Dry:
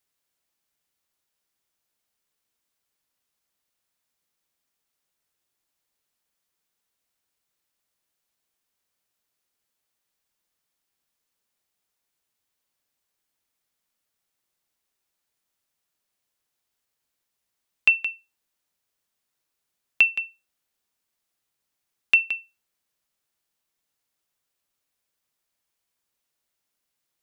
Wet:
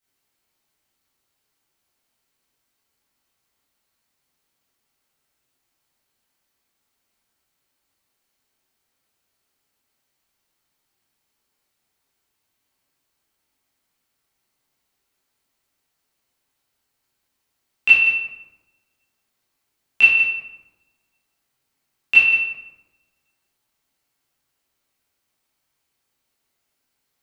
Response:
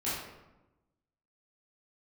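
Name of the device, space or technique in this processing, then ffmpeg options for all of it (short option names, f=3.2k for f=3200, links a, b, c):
bathroom: -filter_complex "[1:a]atrim=start_sample=2205[a];[0:a][a]afir=irnorm=-1:irlink=0,volume=1dB"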